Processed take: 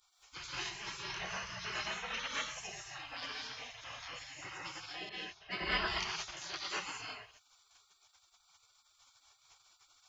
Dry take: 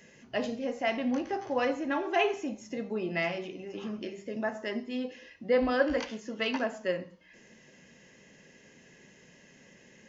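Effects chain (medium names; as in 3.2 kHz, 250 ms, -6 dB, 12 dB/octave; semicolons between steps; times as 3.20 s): gated-style reverb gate 250 ms rising, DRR -4 dB; 5.09–6.37 s: level-controlled noise filter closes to 1.2 kHz, open at -21 dBFS; spectral gate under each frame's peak -25 dB weak; trim +2 dB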